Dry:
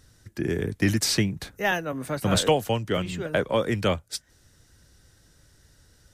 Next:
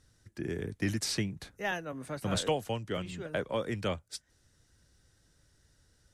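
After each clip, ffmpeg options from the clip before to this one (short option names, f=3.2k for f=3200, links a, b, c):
-af "lowpass=f=12k:w=0.5412,lowpass=f=12k:w=1.3066,volume=-9dB"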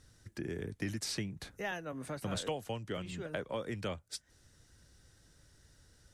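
-af "acompressor=threshold=-45dB:ratio=2,volume=3.5dB"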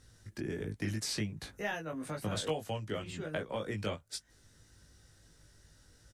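-filter_complex "[0:a]asplit=2[a][b];[b]adelay=19,volume=-3dB[c];[a][c]amix=inputs=2:normalize=0"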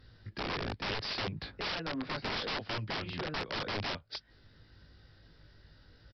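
-af "aresample=11025,aeval=exprs='(mod(47.3*val(0)+1,2)-1)/47.3':c=same,aresample=44100,volume=3.5dB" -ar 44100 -c:a aac -b:a 96k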